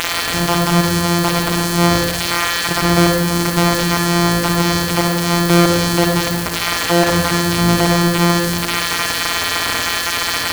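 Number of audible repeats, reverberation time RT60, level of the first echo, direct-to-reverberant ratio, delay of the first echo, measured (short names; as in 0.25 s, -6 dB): none, 1.4 s, none, 1.0 dB, none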